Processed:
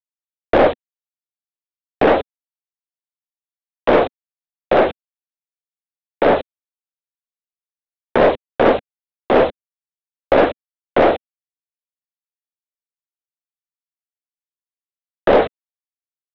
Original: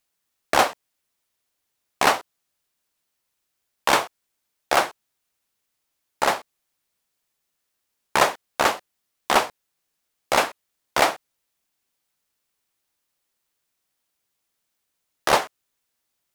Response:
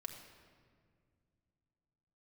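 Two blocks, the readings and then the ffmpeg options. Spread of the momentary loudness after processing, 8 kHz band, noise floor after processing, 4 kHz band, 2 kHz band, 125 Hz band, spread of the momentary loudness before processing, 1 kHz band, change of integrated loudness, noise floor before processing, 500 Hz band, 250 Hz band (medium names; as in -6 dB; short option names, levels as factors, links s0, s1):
7 LU, under -25 dB, under -85 dBFS, -4.5 dB, +0.5 dB, +11.5 dB, 10 LU, +2.0 dB, +5.5 dB, -78 dBFS, +12.0 dB, +14.0 dB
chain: -af "afftfilt=real='re*gte(hypot(re,im),0.0251)':imag='im*gte(hypot(re,im),0.0251)':win_size=1024:overlap=0.75,lowpass=1400,aeval=exprs='val(0)+0.00316*(sin(2*PI*50*n/s)+sin(2*PI*2*50*n/s)/2+sin(2*PI*3*50*n/s)/3+sin(2*PI*4*50*n/s)/4+sin(2*PI*5*50*n/s)/5)':c=same,acontrast=52,alimiter=limit=0.251:level=0:latency=1:release=12,afreqshift=25,crystalizer=i=1.5:c=0,aresample=8000,acrusher=bits=5:mix=0:aa=0.000001,aresample=44100,equalizer=f=250:t=o:w=1:g=8,equalizer=f=500:t=o:w=1:g=10,equalizer=f=1000:t=o:w=1:g=-10,aeval=exprs='0.631*(cos(1*acos(clip(val(0)/0.631,-1,1)))-cos(1*PI/2))+0.0631*(cos(4*acos(clip(val(0)/0.631,-1,1)))-cos(4*PI/2))+0.0891*(cos(5*acos(clip(val(0)/0.631,-1,1)))-cos(5*PI/2))':c=same,volume=1.41"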